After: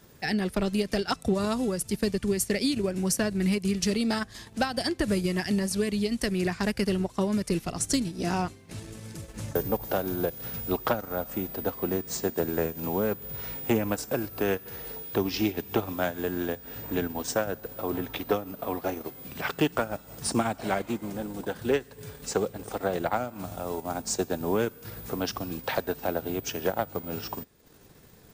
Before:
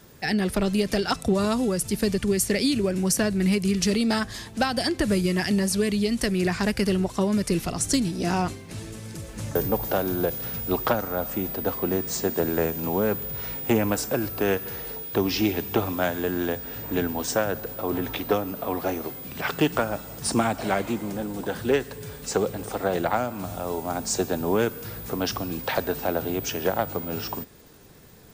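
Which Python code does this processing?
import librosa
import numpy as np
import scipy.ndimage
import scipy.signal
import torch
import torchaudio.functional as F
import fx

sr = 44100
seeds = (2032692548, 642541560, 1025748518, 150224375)

y = fx.transient(x, sr, attack_db=1, sustain_db=-8)
y = y * librosa.db_to_amplitude(-3.5)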